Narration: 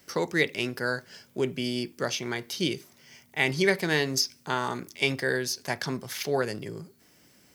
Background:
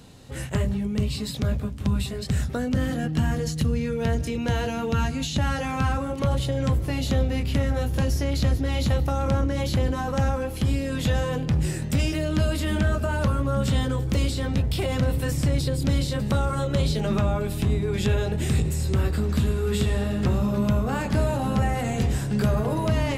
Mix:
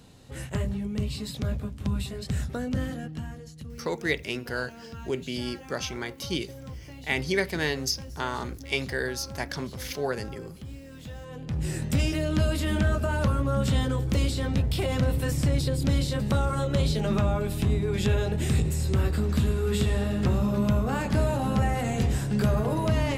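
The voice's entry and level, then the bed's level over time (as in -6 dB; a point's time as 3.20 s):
3.70 s, -2.5 dB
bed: 2.79 s -4.5 dB
3.46 s -17.5 dB
11.20 s -17.5 dB
11.76 s -1.5 dB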